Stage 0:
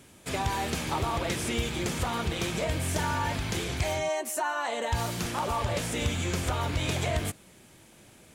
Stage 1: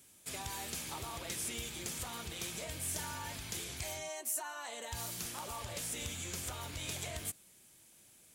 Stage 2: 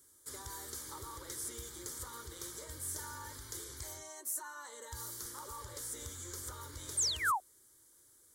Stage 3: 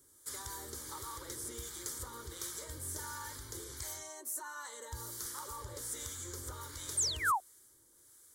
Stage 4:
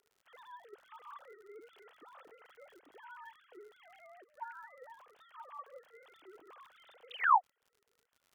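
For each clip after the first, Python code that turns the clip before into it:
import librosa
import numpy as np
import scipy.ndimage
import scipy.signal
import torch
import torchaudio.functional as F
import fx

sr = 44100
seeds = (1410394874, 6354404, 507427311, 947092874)

y1 = F.preemphasis(torch.from_numpy(x), 0.8).numpy()
y1 = y1 * librosa.db_to_amplitude(-2.0)
y2 = fx.spec_paint(y1, sr, seeds[0], shape='fall', start_s=6.97, length_s=0.43, low_hz=680.0, high_hz=9300.0, level_db=-28.0)
y2 = fx.fixed_phaser(y2, sr, hz=700.0, stages=6)
y2 = y2 * librosa.db_to_amplitude(-1.0)
y3 = fx.harmonic_tremolo(y2, sr, hz=1.4, depth_pct=50, crossover_hz=860.0)
y3 = y3 * librosa.db_to_amplitude(4.0)
y4 = fx.sine_speech(y3, sr)
y4 = fx.dmg_crackle(y4, sr, seeds[1], per_s=67.0, level_db=-54.0)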